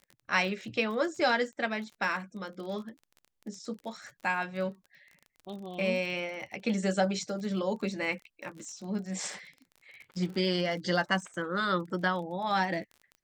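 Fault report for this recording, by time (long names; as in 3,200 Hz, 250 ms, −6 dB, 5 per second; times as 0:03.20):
surface crackle 34 per second −40 dBFS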